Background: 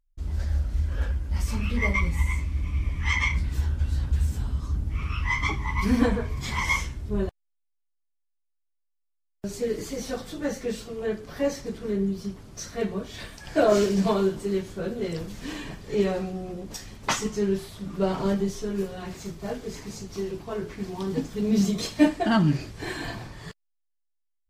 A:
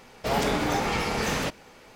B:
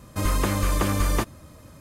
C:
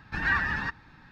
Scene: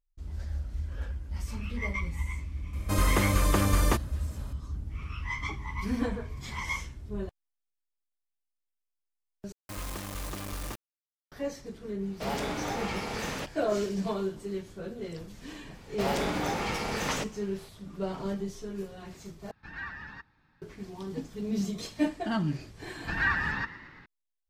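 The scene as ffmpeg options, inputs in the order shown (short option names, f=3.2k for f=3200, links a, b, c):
-filter_complex "[2:a]asplit=2[a][b];[1:a]asplit=2[c][d];[3:a]asplit=2[e][f];[0:a]volume=-8.5dB[g];[b]acrusher=bits=3:mix=0:aa=0.000001[h];[f]asplit=7[i][j][k][l][m][n][o];[j]adelay=114,afreqshift=48,volume=-16dB[p];[k]adelay=228,afreqshift=96,volume=-20.3dB[q];[l]adelay=342,afreqshift=144,volume=-24.6dB[r];[m]adelay=456,afreqshift=192,volume=-28.9dB[s];[n]adelay=570,afreqshift=240,volume=-33.2dB[t];[o]adelay=684,afreqshift=288,volume=-37.5dB[u];[i][p][q][r][s][t][u]amix=inputs=7:normalize=0[v];[g]asplit=3[w][x][y];[w]atrim=end=9.524[z];[h]atrim=end=1.8,asetpts=PTS-STARTPTS,volume=-16dB[aa];[x]atrim=start=11.316:end=19.514[ab];[e]atrim=end=1.11,asetpts=PTS-STARTPTS,volume=-14dB[ac];[y]atrim=start=20.616[ad];[a]atrim=end=1.8,asetpts=PTS-STARTPTS,volume=-1.5dB,afade=t=in:d=0.004:c=hsin,afade=t=out:st=1.796:d=0.004:c=hsin,adelay=2730[ae];[c]atrim=end=1.95,asetpts=PTS-STARTPTS,volume=-7.5dB,afade=t=in:d=0.1,afade=t=out:st=1.85:d=0.1,adelay=11960[af];[d]atrim=end=1.95,asetpts=PTS-STARTPTS,volume=-5dB,afade=t=in:d=0.004:c=hsin,afade=t=out:st=1.946:d=0.004:c=hsin,adelay=15740[ag];[v]atrim=end=1.11,asetpts=PTS-STARTPTS,volume=-1.5dB,afade=t=in:d=0.004:c=hsin,afade=t=out:st=1.106:d=0.004:c=hsin,adelay=22950[ah];[z][aa]acrossfade=d=0.004:c1=hsin:c2=hsin[ai];[ai][ab]acrossfade=d=0.004:c1=hsin:c2=hsin[aj];[aj][ac]acrossfade=d=0.004:c1=hsin:c2=hsin[ak];[ak][ad]acrossfade=d=0.004:c1=hsin:c2=hsin[al];[al][ae][af][ag][ah]amix=inputs=5:normalize=0"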